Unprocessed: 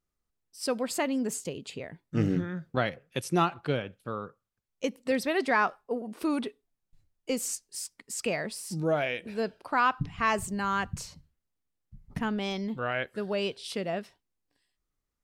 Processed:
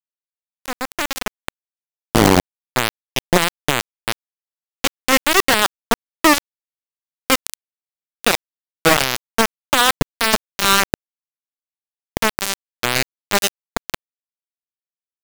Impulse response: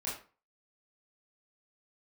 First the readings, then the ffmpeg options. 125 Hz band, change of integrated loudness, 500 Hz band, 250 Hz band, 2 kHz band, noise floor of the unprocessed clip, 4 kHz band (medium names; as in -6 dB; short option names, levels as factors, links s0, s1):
+7.5 dB, +12.5 dB, +8.0 dB, +8.0 dB, +13.0 dB, -84 dBFS, +19.0 dB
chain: -af "alimiter=limit=0.0944:level=0:latency=1:release=14,acrusher=bits=3:mix=0:aa=0.000001,dynaudnorm=f=210:g=11:m=6.31"